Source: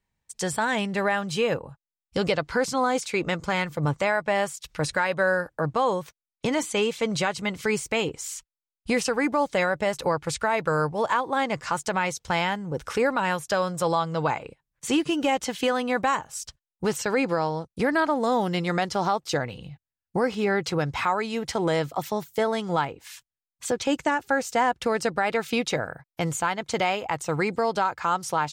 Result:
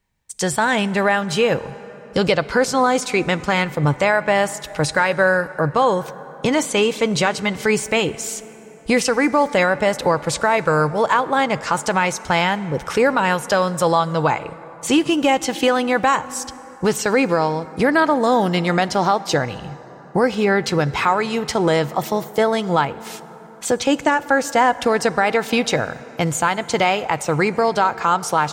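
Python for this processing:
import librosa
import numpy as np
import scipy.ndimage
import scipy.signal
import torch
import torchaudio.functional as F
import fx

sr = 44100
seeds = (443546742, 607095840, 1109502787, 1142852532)

y = fx.rev_plate(x, sr, seeds[0], rt60_s=4.5, hf_ratio=0.45, predelay_ms=0, drr_db=16.0)
y = y * 10.0 ** (7.0 / 20.0)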